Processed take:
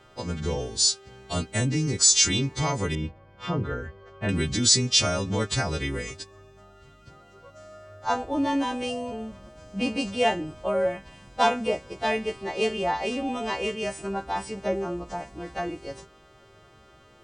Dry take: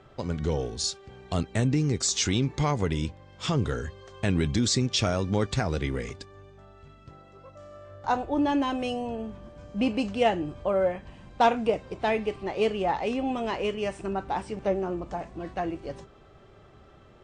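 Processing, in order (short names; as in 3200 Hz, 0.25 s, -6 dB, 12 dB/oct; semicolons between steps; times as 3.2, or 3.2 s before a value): frequency quantiser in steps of 2 st; 2.95–4.29 LPF 1800 Hz 12 dB/oct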